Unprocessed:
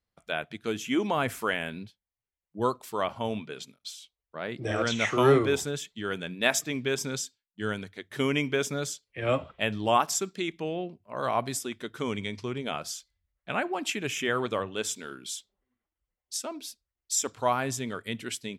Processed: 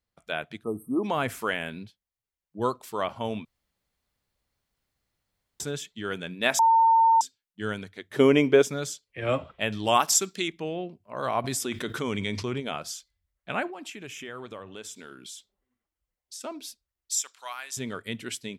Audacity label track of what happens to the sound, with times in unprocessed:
0.630000	1.040000	spectral selection erased 1.3–8.2 kHz
3.450000	5.600000	room tone
6.590000	7.210000	bleep 906 Hz -15.5 dBFS
8.140000	8.620000	peaking EQ 470 Hz +11 dB 2.2 oct
9.720000	10.480000	treble shelf 2.3 kHz +8.5 dB
11.440000	12.600000	level flattener amount 70%
13.700000	16.410000	compression 2.5:1, threshold -41 dBFS
17.140000	17.770000	Bessel high-pass 2.2 kHz

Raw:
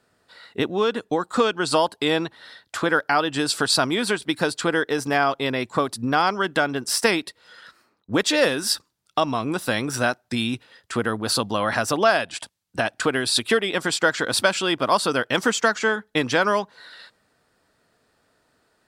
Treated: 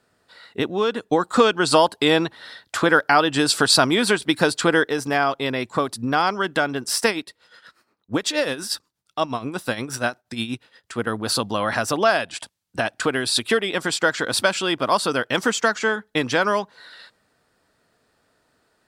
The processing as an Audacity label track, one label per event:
1.120000	4.880000	gain +4 dB
7.080000	11.070000	tremolo 8.4 Hz, depth 70%

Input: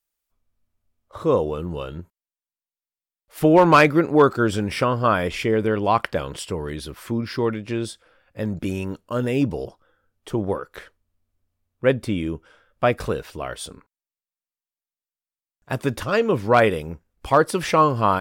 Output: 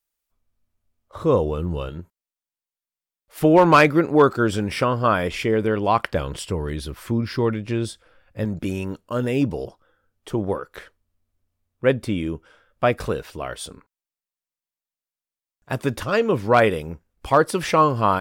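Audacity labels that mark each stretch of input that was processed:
1.170000	1.890000	bass shelf 100 Hz +11.5 dB
6.140000	8.450000	bass shelf 110 Hz +9.5 dB

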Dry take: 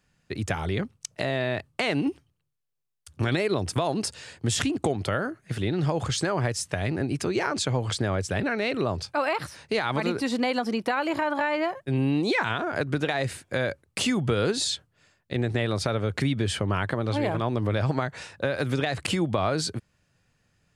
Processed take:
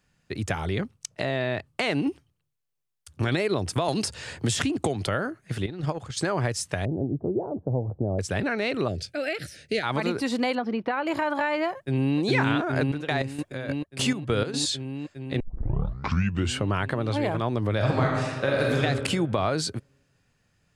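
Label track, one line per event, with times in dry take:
1.090000	1.670000	treble shelf 9.8 kHz -10.5 dB
3.880000	5.070000	three bands compressed up and down depth 70%
5.660000	6.170000	gate -25 dBFS, range -11 dB
6.850000	8.190000	steep low-pass 750 Hz
8.880000	9.830000	Butterworth band-stop 1 kHz, Q 1
10.550000	11.070000	distance through air 310 m
11.760000	12.190000	echo throw 410 ms, feedback 85%, level -1.5 dB
12.780000	14.540000	square tremolo 3.3 Hz, depth 65%, duty 45%
15.400000	15.400000	tape start 1.21 s
17.760000	18.800000	reverb throw, RT60 1.5 s, DRR -2 dB

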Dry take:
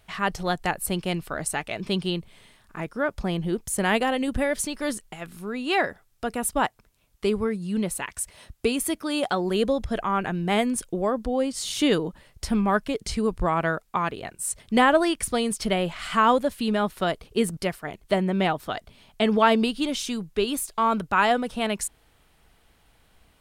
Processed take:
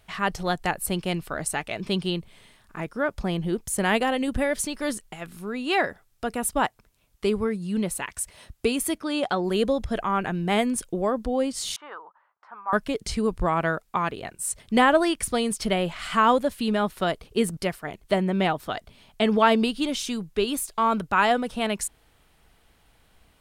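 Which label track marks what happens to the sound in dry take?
8.980000	9.440000	distance through air 53 m
11.760000	12.730000	Butterworth band-pass 1.1 kHz, Q 1.9

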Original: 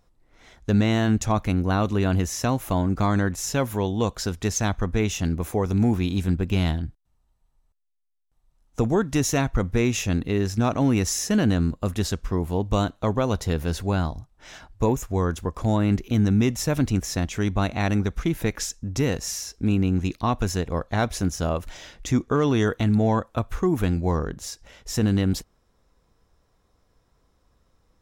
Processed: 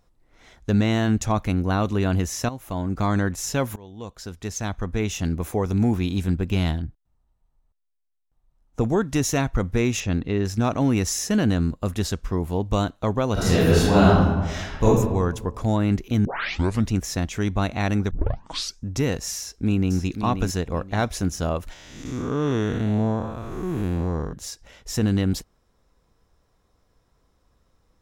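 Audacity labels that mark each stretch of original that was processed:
2.490000	3.120000	fade in, from -13 dB
3.760000	5.320000	fade in, from -23 dB
6.820000	8.810000	treble shelf 2.2 kHz -9 dB
10.000000	10.450000	distance through air 93 m
13.330000	14.840000	reverb throw, RT60 1.3 s, DRR -10.5 dB
16.250000	16.250000	tape start 0.67 s
18.110000	18.110000	tape start 0.71 s
19.370000	19.970000	echo throw 530 ms, feedback 25%, level -8 dB
21.730000	24.330000	spectral blur width 259 ms

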